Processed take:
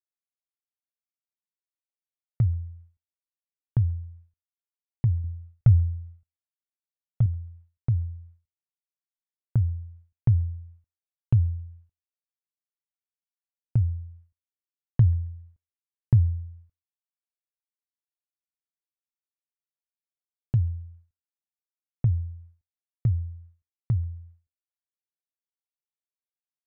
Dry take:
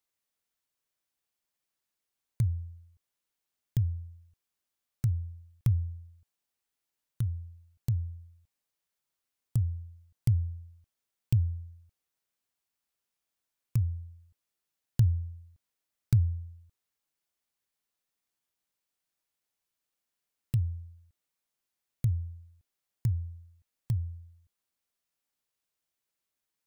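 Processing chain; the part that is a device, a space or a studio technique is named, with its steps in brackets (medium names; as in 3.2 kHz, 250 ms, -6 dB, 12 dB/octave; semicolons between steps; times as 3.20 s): hearing-loss simulation (low-pass 1.8 kHz 12 dB/octave; expander -50 dBFS); 5.24–7.26 s: comb 1.5 ms, depth 84%; distance through air 160 m; thinning echo 136 ms, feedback 34%, high-pass 1 kHz, level -23 dB; trim +5 dB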